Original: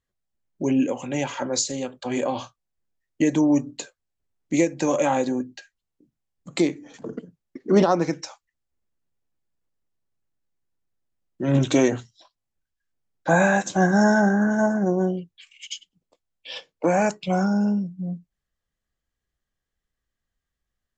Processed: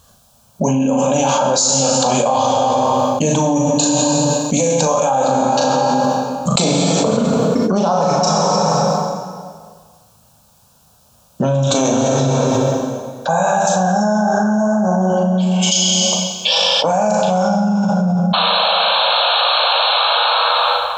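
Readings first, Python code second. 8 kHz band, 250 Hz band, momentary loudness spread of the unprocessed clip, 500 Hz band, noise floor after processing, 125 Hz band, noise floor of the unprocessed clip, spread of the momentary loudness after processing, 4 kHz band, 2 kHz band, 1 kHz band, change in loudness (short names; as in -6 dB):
+16.5 dB, +6.0 dB, 18 LU, +9.5 dB, -52 dBFS, +9.5 dB, -84 dBFS, 4 LU, +22.5 dB, +5.5 dB, +14.0 dB, +7.5 dB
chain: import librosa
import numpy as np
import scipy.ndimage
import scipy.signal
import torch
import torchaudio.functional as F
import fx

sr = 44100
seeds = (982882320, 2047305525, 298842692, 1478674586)

y = fx.spec_paint(x, sr, seeds[0], shape='noise', start_s=18.33, length_s=1.71, low_hz=460.0, high_hz=4300.0, level_db=-23.0)
y = fx.highpass(y, sr, hz=140.0, slope=6)
y = fx.fixed_phaser(y, sr, hz=820.0, stages=4)
y = fx.doubler(y, sr, ms=38.0, db=-4.5)
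y = fx.rev_plate(y, sr, seeds[1], rt60_s=1.8, hf_ratio=0.8, predelay_ms=0, drr_db=2.5)
y = fx.env_flatten(y, sr, amount_pct=100)
y = y * 10.0 ** (-2.0 / 20.0)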